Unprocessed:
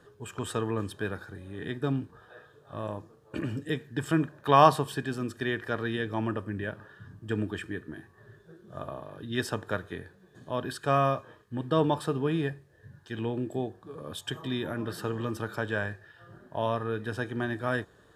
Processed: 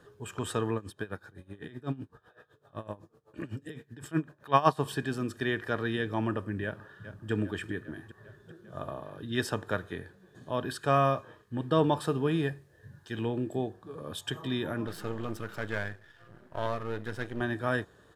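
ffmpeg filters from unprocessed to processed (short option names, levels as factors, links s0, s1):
-filter_complex "[0:a]asplit=3[s0][s1][s2];[s0]afade=t=out:st=0.74:d=0.02[s3];[s1]aeval=exprs='val(0)*pow(10,-20*(0.5-0.5*cos(2*PI*7.9*n/s))/20)':c=same,afade=t=in:st=0.74:d=0.02,afade=t=out:st=4.81:d=0.02[s4];[s2]afade=t=in:st=4.81:d=0.02[s5];[s3][s4][s5]amix=inputs=3:normalize=0,asplit=2[s6][s7];[s7]afade=t=in:st=6.64:d=0.01,afade=t=out:st=7.31:d=0.01,aecho=0:1:400|800|1200|1600|2000|2400|2800|3200|3600|4000:0.266073|0.186251|0.130376|0.0912629|0.063884|0.0447188|0.0313032|0.0219122|0.0153386|0.010737[s8];[s6][s8]amix=inputs=2:normalize=0,asettb=1/sr,asplit=3[s9][s10][s11];[s9]atrim=end=12.044[s12];[s10]atrim=start=12.04:end=13.28,asetpts=PTS-STARTPTS,afade=t=in:d=0.004:c=qsin,afade=t=out:st=1.236:d=0.004:c=qsin,highshelf=f=5100:g=4[s13];[s11]atrim=start=13.276[s14];[s12][s13]acrossfade=d=0.004:c1=hsin:c2=qsin[s15];[s15][s14]acrossfade=d=0.004:c1=qsin:c2=hsin,asettb=1/sr,asplit=3[s16][s17][s18];[s16]atrim=end=14.874[s19];[s17]atrim=start=14.87:end=17.41,asetpts=PTS-STARTPTS,afade=t=in:d=0.004:c=qsin,afade=t=out:st=2.536:d=0.004:c=qsin,aeval=exprs='if(lt(val(0),0),0.251*val(0),val(0))':c=same[s20];[s18]atrim=start=17.406[s21];[s19][s20]acrossfade=d=0.004:c1=hsin:c2=qsin[s22];[s22][s21]acrossfade=d=0.004:c1=qsin:c2=hsin"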